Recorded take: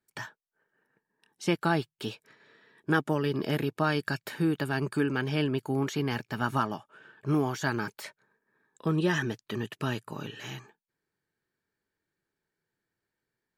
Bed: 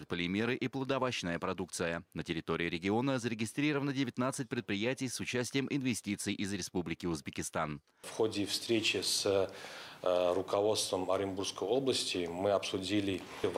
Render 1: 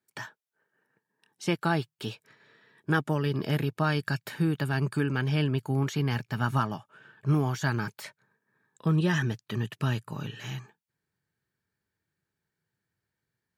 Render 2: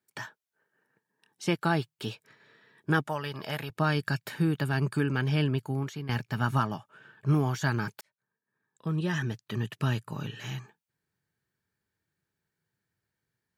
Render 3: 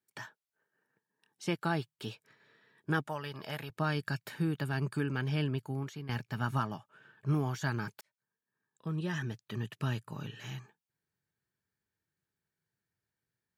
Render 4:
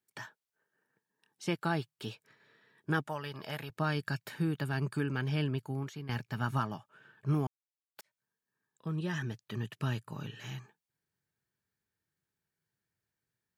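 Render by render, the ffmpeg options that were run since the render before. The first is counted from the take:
-af "highpass=92,asubboost=boost=4.5:cutoff=140"
-filter_complex "[0:a]asettb=1/sr,asplit=3[a][b][c];[a]atrim=end=3.074[d];[b]atrim=start=3.07:end=3.7,asetpts=PTS-STARTPTS,afade=t=in:d=0.004:c=qsin,afade=t=out:st=0.626:d=0.004:c=qsin,lowshelf=f=500:t=q:w=1.5:g=-9.5[e];[c]atrim=start=3.696[f];[d][e]acrossfade=d=0.004:c1=hsin:c2=qsin[g];[g][f]acrossfade=d=0.004:c1=qsin:c2=hsin,asplit=3[h][i][j];[h]atrim=end=6.09,asetpts=PTS-STARTPTS,afade=t=out:st=5.49:d=0.6:silence=0.223872[k];[i]atrim=start=6.09:end=8.01,asetpts=PTS-STARTPTS,afade=t=in:d=0.004:c=hsin:silence=0.223872,afade=t=out:st=1.916:d=0.004:c=hsin[l];[j]atrim=start=8.01,asetpts=PTS-STARTPTS,afade=t=in:d=1.75[m];[k][l][m]concat=n=3:v=0:a=1"
-af "volume=-5.5dB"
-filter_complex "[0:a]asplit=3[a][b][c];[a]atrim=end=7.47,asetpts=PTS-STARTPTS,afade=t=out:st=7.466:d=0.004:c=hsin[d];[b]atrim=start=7.47:end=7.96,asetpts=PTS-STARTPTS,volume=0[e];[c]atrim=start=7.96,asetpts=PTS-STARTPTS,afade=t=in:d=0.004:c=hsin[f];[d][e][f]concat=n=3:v=0:a=1"

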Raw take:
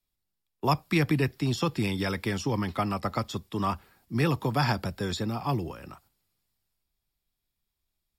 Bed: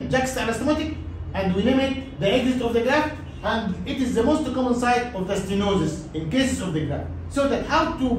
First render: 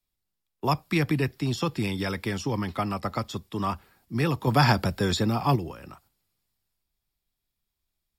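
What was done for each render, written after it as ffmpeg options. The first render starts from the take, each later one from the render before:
-filter_complex "[0:a]asettb=1/sr,asplit=3[a][b][c];[a]atrim=end=4.474[d];[b]atrim=start=4.47:end=5.56,asetpts=PTS-STARTPTS,afade=t=in:d=0.004:c=qsin,afade=t=out:st=1.086:d=0.004:c=qsin,acontrast=48[e];[c]atrim=start=5.556[f];[d][e]acrossfade=d=0.004:c1=hsin:c2=qsin[g];[g][f]acrossfade=d=0.004:c1=qsin:c2=hsin"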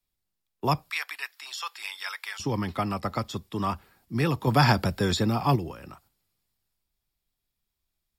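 -filter_complex "[0:a]asettb=1/sr,asplit=3[a][b][c];[a]atrim=end=0.904[d];[b]atrim=start=0.9:end=2.4,asetpts=PTS-STARTPTS,afade=t=in:d=0.004:c=qsin,afade=t=out:st=1.496:d=0.004:c=qsin,highpass=f=1k:w=0.5412,highpass=f=1k:w=1.3066[e];[c]atrim=start=2.396[f];[d][e]acrossfade=d=0.004:c1=hsin:c2=qsin[g];[g][f]acrossfade=d=0.004:c1=qsin:c2=hsin"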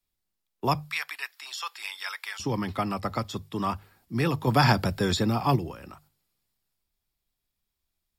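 -af "bandreject=f=50:t=h:w=6,bandreject=f=100:t=h:w=6,bandreject=f=150:t=h:w=6"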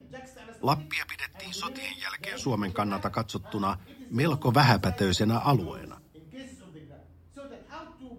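-filter_complex "[1:a]volume=-23dB[a];[0:a][a]amix=inputs=2:normalize=0"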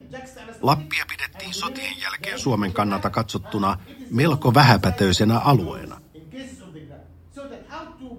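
-af "volume=7dB"

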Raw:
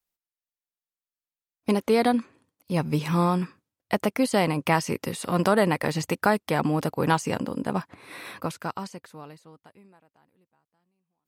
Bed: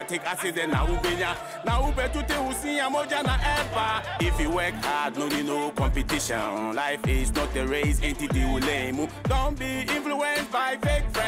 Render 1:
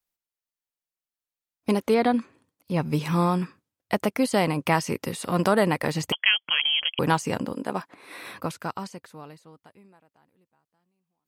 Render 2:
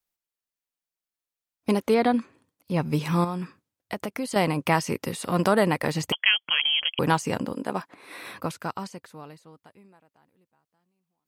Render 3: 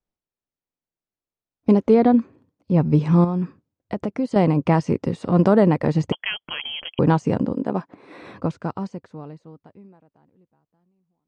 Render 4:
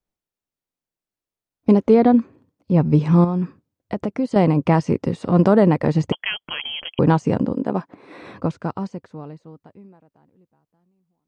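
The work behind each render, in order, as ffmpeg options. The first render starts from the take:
-filter_complex "[0:a]asettb=1/sr,asplit=3[a][b][c];[a]atrim=end=1.944[d];[b]atrim=start=1.94:end=2.85,asetpts=PTS-STARTPTS,afade=t=in:d=0.004:c=qsin,afade=t=out:st=0.906:d=0.004:c=qsin,acrossover=split=4100[e][f];[f]acompressor=threshold=-51dB:ratio=4:attack=1:release=60[g];[e][g]amix=inputs=2:normalize=0[h];[c]atrim=start=2.846[i];[d][h]acrossfade=d=0.004:c1=hsin:c2=qsin[j];[j][i]acrossfade=d=0.004:c1=qsin:c2=hsin,asettb=1/sr,asplit=3[k][l][m];[k]atrim=end=6.124[n];[l]atrim=start=6.12:end=6.99,asetpts=PTS-STARTPTS,afade=t=in:d=0.004:c=qsin,afade=t=out:st=0.866:d=0.004:c=qsin,lowpass=f=2.9k:t=q:w=0.5098,lowpass=f=2.9k:t=q:w=0.6013,lowpass=f=2.9k:t=q:w=0.9,lowpass=f=2.9k:t=q:w=2.563,afreqshift=-3400[o];[m]atrim=start=6.986[p];[n][o]acrossfade=d=0.004:c1=hsin:c2=qsin[q];[q][p]acrossfade=d=0.004:c1=qsin:c2=hsin,asettb=1/sr,asplit=3[r][s][t];[r]atrim=end=7.534[u];[s]atrim=start=7.53:end=8.22,asetpts=PTS-STARTPTS,afade=t=in:d=0.004:c=qsin,afade=t=out:st=0.686:d=0.004:c=qsin,highpass=250[v];[t]atrim=start=8.216[w];[u][v]acrossfade=d=0.004:c1=hsin:c2=qsin[x];[x][w]acrossfade=d=0.004:c1=qsin:c2=hsin"
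-filter_complex "[0:a]asettb=1/sr,asplit=3[a][b][c];[a]atrim=end=3.244[d];[b]atrim=start=3.24:end=4.36,asetpts=PTS-STARTPTS,afade=t=in:d=0.004:c=qsin,afade=t=out:st=1.116:d=0.004:c=qsin,acompressor=threshold=-29dB:ratio=2.5:attack=3.2:release=140:knee=1:detection=peak[e];[c]atrim=start=4.356[f];[d][e]acrossfade=d=0.004:c1=hsin:c2=qsin[g];[g][f]acrossfade=d=0.004:c1=qsin:c2=hsin"
-af "lowpass=f=7.1k:w=0.5412,lowpass=f=7.1k:w=1.3066,tiltshelf=f=970:g=9.5"
-af "volume=1.5dB,alimiter=limit=-3dB:level=0:latency=1"

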